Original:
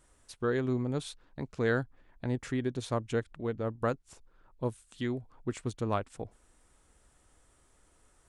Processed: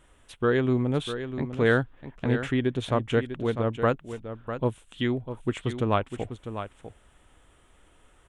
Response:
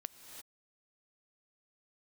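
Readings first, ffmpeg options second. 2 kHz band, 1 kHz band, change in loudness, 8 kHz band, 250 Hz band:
+8.0 dB, +7.5 dB, +6.5 dB, can't be measured, +7.0 dB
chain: -af "highshelf=frequency=3900:width_type=q:width=3:gain=-6,aecho=1:1:649:0.316,volume=6.5dB"

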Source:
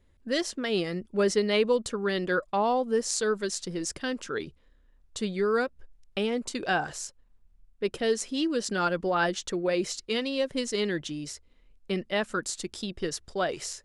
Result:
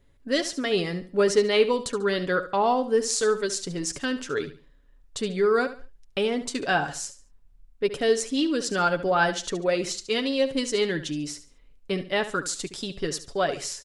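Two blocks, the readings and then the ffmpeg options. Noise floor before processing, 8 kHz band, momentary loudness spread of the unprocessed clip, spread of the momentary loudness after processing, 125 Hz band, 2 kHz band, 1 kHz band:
−62 dBFS, +3.5 dB, 9 LU, 9 LU, +2.5 dB, +3.5 dB, +3.5 dB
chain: -af "aecho=1:1:7.1:0.41,aecho=1:1:71|142|213:0.224|0.0649|0.0188,volume=2.5dB"

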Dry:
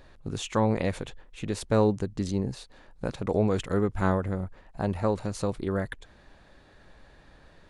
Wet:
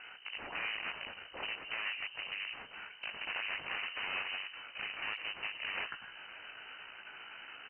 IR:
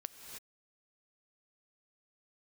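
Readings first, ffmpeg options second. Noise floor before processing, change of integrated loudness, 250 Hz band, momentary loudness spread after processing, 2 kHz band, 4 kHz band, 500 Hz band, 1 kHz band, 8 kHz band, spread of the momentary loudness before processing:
−56 dBFS, −10.5 dB, −32.0 dB, 11 LU, +4.5 dB, +4.0 dB, −25.5 dB, −11.5 dB, below −35 dB, 13 LU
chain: -filter_complex "[0:a]acompressor=threshold=-30dB:ratio=10[link_01];[1:a]atrim=start_sample=2205,afade=type=out:start_time=0.21:duration=0.01,atrim=end_sample=9702[link_02];[link_01][link_02]afir=irnorm=-1:irlink=0,flanger=delay=17:depth=2.6:speed=0.84,bandreject=frequency=60:width_type=h:width=6,bandreject=frequency=120:width_type=h:width=6,bandreject=frequency=180:width_type=h:width=6,bandreject=frequency=240:width_type=h:width=6,bandreject=frequency=300:width_type=h:width=6,bandreject=frequency=360:width_type=h:width=6,alimiter=level_in=16dB:limit=-24dB:level=0:latency=1:release=354,volume=-16dB,aeval=exprs='val(0)+0.000891*(sin(2*PI*60*n/s)+sin(2*PI*2*60*n/s)/2+sin(2*PI*3*60*n/s)/3+sin(2*PI*4*60*n/s)/4+sin(2*PI*5*60*n/s)/5)':channel_layout=same,aeval=exprs='0.0119*(cos(1*acos(clip(val(0)/0.0119,-1,1)))-cos(1*PI/2))+0.000473*(cos(3*acos(clip(val(0)/0.0119,-1,1)))-cos(3*PI/2))+0.00596*(cos(7*acos(clip(val(0)/0.0119,-1,1)))-cos(7*PI/2))':channel_layout=same,highpass=frequency=170:width=0.5412,highpass=frequency=170:width=1.3066,lowshelf=frequency=440:gain=-7,asplit=2[link_03][link_04];[link_04]adelay=542.3,volume=-21dB,highshelf=frequency=4000:gain=-12.2[link_05];[link_03][link_05]amix=inputs=2:normalize=0,lowpass=frequency=2700:width_type=q:width=0.5098,lowpass=frequency=2700:width_type=q:width=0.6013,lowpass=frequency=2700:width_type=q:width=0.9,lowpass=frequency=2700:width_type=q:width=2.563,afreqshift=-3200,volume=11.5dB" -ar 22050 -c:a aac -b:a 24k

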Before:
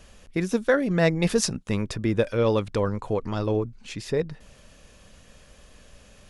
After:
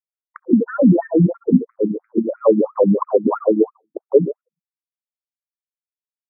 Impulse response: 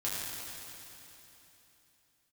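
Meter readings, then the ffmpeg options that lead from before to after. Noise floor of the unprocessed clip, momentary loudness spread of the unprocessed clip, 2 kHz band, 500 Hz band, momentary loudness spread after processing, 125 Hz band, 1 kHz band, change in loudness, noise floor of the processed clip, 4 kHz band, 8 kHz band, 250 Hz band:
−53 dBFS, 8 LU, can't be measured, +7.5 dB, 8 LU, +4.0 dB, +5.5 dB, +8.0 dB, below −85 dBFS, below −40 dB, below −40 dB, +10.0 dB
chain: -filter_complex "[0:a]asuperstop=centerf=2100:order=4:qfactor=0.81,asplit=2[link_01][link_02];[link_02]highpass=frequency=720:poles=1,volume=16dB,asoftclip=type=tanh:threshold=-6.5dB[link_03];[link_01][link_03]amix=inputs=2:normalize=0,lowpass=frequency=2900:poles=1,volume=-6dB,equalizer=frequency=1800:width=3.4:gain=6.5,afftfilt=real='re*gte(hypot(re,im),0.141)':imag='im*gte(hypot(re,im),0.141)':win_size=1024:overlap=0.75,tiltshelf=frequency=1200:gain=8.5,asplit=2[link_04][link_05];[link_05]adelay=66,lowpass=frequency=3000:poles=1,volume=-15dB,asplit=2[link_06][link_07];[link_07]adelay=66,lowpass=frequency=3000:poles=1,volume=0.44,asplit=2[link_08][link_09];[link_09]adelay=66,lowpass=frequency=3000:poles=1,volume=0.44,asplit=2[link_10][link_11];[link_11]adelay=66,lowpass=frequency=3000:poles=1,volume=0.44[link_12];[link_04][link_06][link_08][link_10][link_12]amix=inputs=5:normalize=0,agate=range=-33dB:threshold=-31dB:ratio=16:detection=peak,acompressor=threshold=-24dB:ratio=6,highpass=50,alimiter=level_in=22dB:limit=-1dB:release=50:level=0:latency=1,afftfilt=real='re*between(b*sr/1024,210*pow(1800/210,0.5+0.5*sin(2*PI*3*pts/sr))/1.41,210*pow(1800/210,0.5+0.5*sin(2*PI*3*pts/sr))*1.41)':imag='im*between(b*sr/1024,210*pow(1800/210,0.5+0.5*sin(2*PI*3*pts/sr))/1.41,210*pow(1800/210,0.5+0.5*sin(2*PI*3*pts/sr))*1.41)':win_size=1024:overlap=0.75"

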